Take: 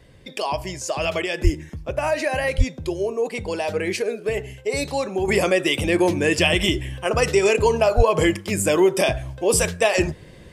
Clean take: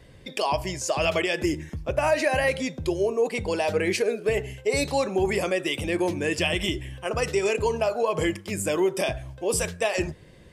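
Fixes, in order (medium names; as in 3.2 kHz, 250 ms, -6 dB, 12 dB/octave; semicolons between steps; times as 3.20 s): de-plosive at 1.43/2.57/7.96 s; trim 0 dB, from 5.28 s -6.5 dB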